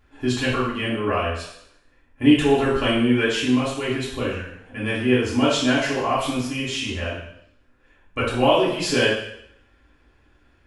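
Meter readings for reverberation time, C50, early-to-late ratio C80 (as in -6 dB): 0.75 s, 2.0 dB, 6.0 dB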